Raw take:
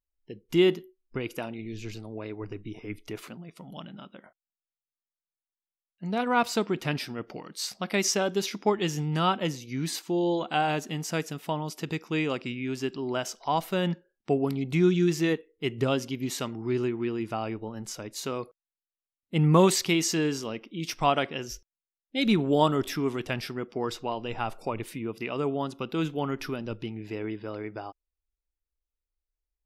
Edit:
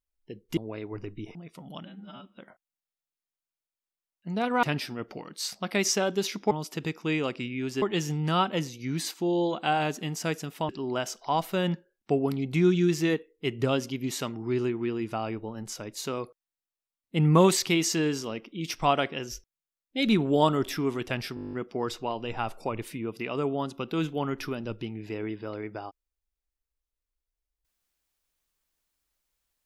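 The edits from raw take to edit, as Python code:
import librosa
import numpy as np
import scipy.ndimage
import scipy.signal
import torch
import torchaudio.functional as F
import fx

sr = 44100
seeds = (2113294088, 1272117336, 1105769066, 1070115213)

y = fx.edit(x, sr, fx.cut(start_s=0.57, length_s=1.48),
    fx.cut(start_s=2.83, length_s=0.54),
    fx.stretch_span(start_s=3.87, length_s=0.26, factor=2.0),
    fx.cut(start_s=6.39, length_s=0.43),
    fx.move(start_s=11.57, length_s=1.31, to_s=8.7),
    fx.stutter(start_s=23.54, slice_s=0.02, count=10), tone=tone)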